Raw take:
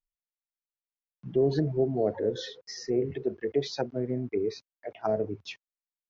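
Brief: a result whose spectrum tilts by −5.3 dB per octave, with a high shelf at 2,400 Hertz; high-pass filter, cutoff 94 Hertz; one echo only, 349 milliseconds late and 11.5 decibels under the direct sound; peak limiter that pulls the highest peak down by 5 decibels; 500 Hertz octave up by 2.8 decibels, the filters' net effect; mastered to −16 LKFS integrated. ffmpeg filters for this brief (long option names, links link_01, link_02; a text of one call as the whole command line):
ffmpeg -i in.wav -af "highpass=94,equalizer=frequency=500:width_type=o:gain=3.5,highshelf=frequency=2400:gain=5.5,alimiter=limit=-16.5dB:level=0:latency=1,aecho=1:1:349:0.266,volume=13.5dB" out.wav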